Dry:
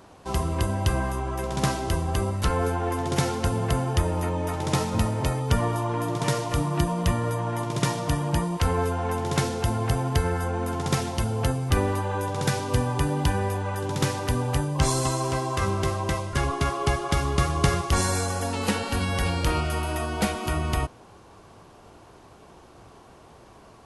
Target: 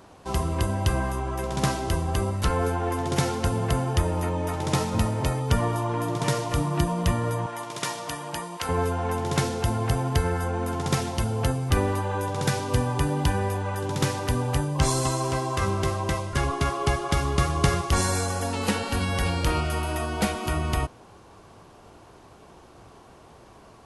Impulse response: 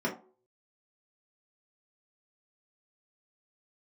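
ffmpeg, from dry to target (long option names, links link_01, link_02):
-filter_complex "[0:a]asettb=1/sr,asplit=3[link_01][link_02][link_03];[link_01]atrim=end=7.464[link_04];[link_02]atrim=start=7.46:end=8.69,asetpts=PTS-STARTPTS,afade=type=in:duration=0.004:curve=qsin,afade=type=out:start_time=1.226:duration=0.004:curve=qsin,highpass=frequency=820:poles=1[link_05];[link_03]atrim=start=8.686[link_06];[link_04][link_05]acrossfade=duration=0.004:curve1=hsin:curve2=qsin[link_07];[link_07][link_06]acrossfade=duration=0.004:curve1=qsin:curve2=hsin"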